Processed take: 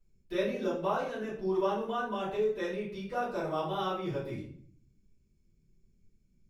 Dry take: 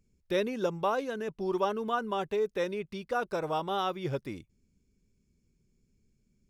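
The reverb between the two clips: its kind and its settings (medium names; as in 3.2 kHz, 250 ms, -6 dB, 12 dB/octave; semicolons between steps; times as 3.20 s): simulated room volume 76 m³, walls mixed, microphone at 2.9 m; trim -14.5 dB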